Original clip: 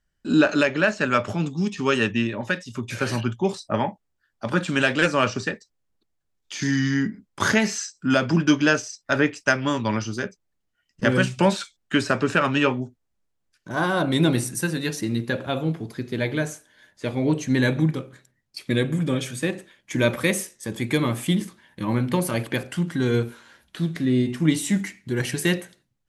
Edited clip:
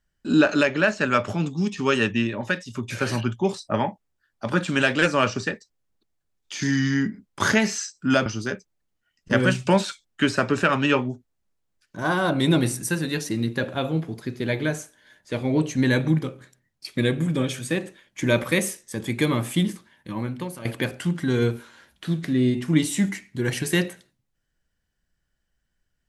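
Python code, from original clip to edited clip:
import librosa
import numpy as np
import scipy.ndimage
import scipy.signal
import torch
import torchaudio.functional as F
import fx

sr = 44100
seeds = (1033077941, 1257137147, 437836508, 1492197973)

y = fx.edit(x, sr, fx.cut(start_s=8.26, length_s=1.72),
    fx.fade_out_to(start_s=21.31, length_s=1.06, floor_db=-14.5), tone=tone)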